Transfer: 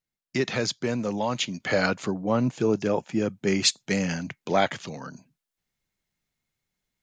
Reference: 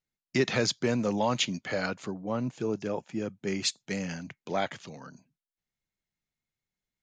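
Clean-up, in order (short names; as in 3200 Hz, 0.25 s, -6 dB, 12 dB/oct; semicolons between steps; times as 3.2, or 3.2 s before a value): gain correction -7.5 dB, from 1.6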